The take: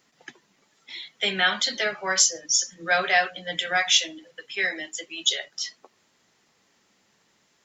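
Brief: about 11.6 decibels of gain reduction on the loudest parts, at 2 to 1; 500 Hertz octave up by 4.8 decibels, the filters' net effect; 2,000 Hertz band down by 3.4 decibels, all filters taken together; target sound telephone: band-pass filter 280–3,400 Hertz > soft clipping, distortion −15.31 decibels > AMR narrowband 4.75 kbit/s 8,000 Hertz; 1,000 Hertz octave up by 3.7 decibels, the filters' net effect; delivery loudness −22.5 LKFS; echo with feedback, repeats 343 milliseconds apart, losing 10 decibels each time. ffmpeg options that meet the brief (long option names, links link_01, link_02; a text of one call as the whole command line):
ffmpeg -i in.wav -af "equalizer=frequency=500:width_type=o:gain=5.5,equalizer=frequency=1000:width_type=o:gain=4,equalizer=frequency=2000:width_type=o:gain=-5.5,acompressor=threshold=-37dB:ratio=2,highpass=280,lowpass=3400,aecho=1:1:343|686|1029|1372:0.316|0.101|0.0324|0.0104,asoftclip=threshold=-27dB,volume=18dB" -ar 8000 -c:a libopencore_amrnb -b:a 4750 out.amr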